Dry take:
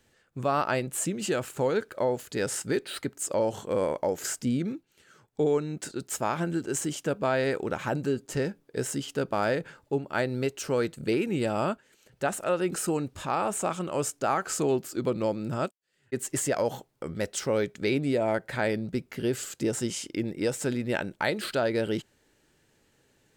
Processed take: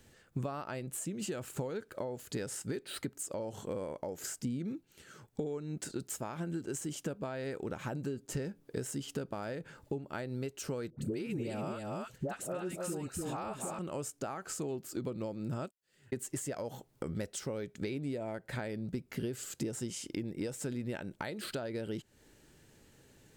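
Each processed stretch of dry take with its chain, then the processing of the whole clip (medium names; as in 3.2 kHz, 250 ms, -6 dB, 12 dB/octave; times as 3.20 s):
10.90–13.79 s: phase dispersion highs, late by 84 ms, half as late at 780 Hz + delay 291 ms -5.5 dB
whole clip: treble shelf 5.5 kHz +5 dB; compression 10:1, threshold -39 dBFS; bass shelf 350 Hz +7 dB; trim +1 dB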